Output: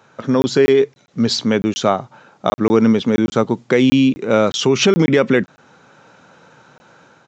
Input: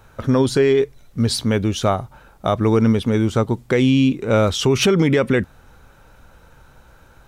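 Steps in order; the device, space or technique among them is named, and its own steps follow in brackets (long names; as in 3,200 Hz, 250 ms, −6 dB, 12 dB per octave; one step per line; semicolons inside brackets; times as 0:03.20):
call with lost packets (high-pass filter 150 Hz 24 dB per octave; downsampling to 16,000 Hz; automatic gain control gain up to 4 dB; dropped packets of 20 ms random)
level +1 dB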